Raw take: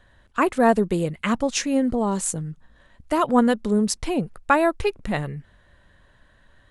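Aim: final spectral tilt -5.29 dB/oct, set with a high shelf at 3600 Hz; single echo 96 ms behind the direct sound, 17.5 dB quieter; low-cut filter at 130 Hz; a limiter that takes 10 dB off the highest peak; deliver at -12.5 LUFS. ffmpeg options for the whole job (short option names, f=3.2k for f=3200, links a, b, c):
-af "highpass=130,highshelf=f=3.6k:g=-5,alimiter=limit=-14.5dB:level=0:latency=1,aecho=1:1:96:0.133,volume=13dB"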